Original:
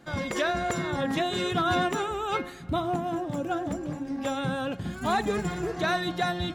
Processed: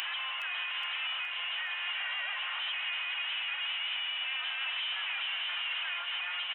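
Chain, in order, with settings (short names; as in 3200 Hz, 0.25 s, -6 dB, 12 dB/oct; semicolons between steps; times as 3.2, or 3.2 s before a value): infinite clipping; inverted band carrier 3200 Hz; spring tank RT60 4 s, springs 55 ms, chirp 55 ms, DRR 17 dB; upward compressor, threshold -33 dBFS; split-band echo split 1600 Hz, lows 0.157 s, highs 0.417 s, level -8 dB; harmoniser -4 st -11 dB, +3 st -16 dB; HPF 790 Hz 24 dB/oct; gain -7 dB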